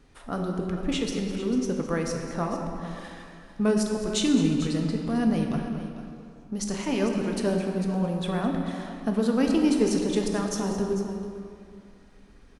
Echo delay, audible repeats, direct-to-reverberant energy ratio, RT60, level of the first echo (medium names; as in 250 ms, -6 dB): 210 ms, 2, 1.0 dB, 2.4 s, -13.5 dB